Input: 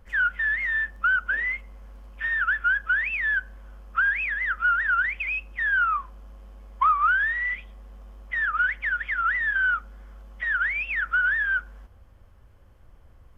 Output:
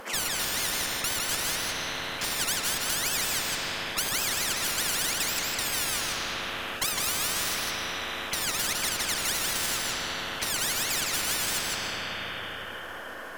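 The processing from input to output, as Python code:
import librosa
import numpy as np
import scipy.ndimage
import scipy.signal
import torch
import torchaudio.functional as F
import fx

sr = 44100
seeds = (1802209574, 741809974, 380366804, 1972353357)

y = scipy.signal.sosfilt(scipy.signal.bessel(8, 410.0, 'highpass', norm='mag', fs=sr, output='sos'), x)
y = fx.clip_asym(y, sr, top_db=-31.5, bottom_db=-17.5)
y = y + 10.0 ** (-4.5 / 20.0) * np.pad(y, (int(158 * sr / 1000.0), 0))[:len(y)]
y = fx.rev_freeverb(y, sr, rt60_s=3.3, hf_ratio=0.65, predelay_ms=100, drr_db=7.5)
y = fx.spectral_comp(y, sr, ratio=10.0)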